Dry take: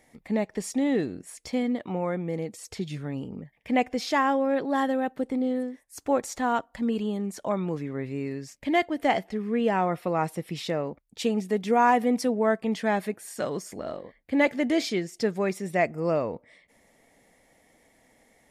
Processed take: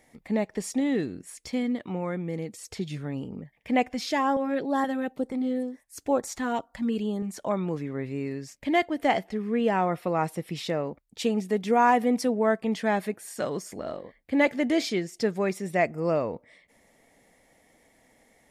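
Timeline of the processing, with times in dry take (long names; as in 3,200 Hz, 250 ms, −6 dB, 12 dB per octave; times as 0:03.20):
0:00.80–0:02.70: parametric band 670 Hz −5 dB 1.2 octaves
0:03.89–0:07.34: auto-filter notch saw up 2.1 Hz 310–3,400 Hz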